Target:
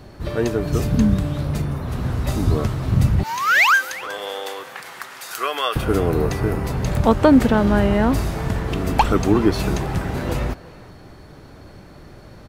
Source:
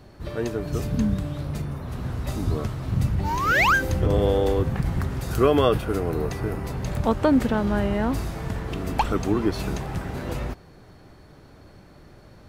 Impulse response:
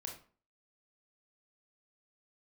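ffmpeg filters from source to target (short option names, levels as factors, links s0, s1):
-filter_complex "[0:a]asettb=1/sr,asplit=3[s0][s1][s2];[s0]atrim=end=3.234[s3];[s1]atrim=start=3.23:end=5.76,asetpts=PTS-STARTPTS,afade=t=in:d=0.004:c=qsin,afade=t=out:st=2.526:d=0.004:c=qsin,highpass=1200[s4];[s2]atrim=start=5.756[s5];[s3][s4]acrossfade=d=0.004:c1=hsin:c2=qsin[s6];[s6][s5]acrossfade=d=0.004:c1=qsin:c2=hsin,asplit=2[s7][s8];[s8]adelay=360,highpass=300,lowpass=3400,asoftclip=type=hard:threshold=0.141,volume=0.126[s9];[s7][s9]amix=inputs=2:normalize=0,volume=2.11"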